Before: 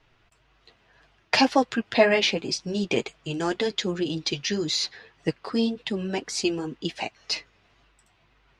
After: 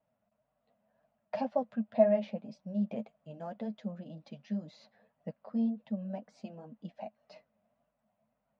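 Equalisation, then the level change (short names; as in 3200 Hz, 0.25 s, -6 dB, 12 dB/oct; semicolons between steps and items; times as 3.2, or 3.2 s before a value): double band-pass 360 Hz, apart 1.5 oct; -1.5 dB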